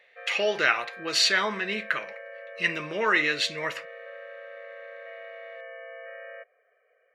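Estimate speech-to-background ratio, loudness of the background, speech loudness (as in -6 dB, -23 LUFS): 17.0 dB, -42.5 LUFS, -25.5 LUFS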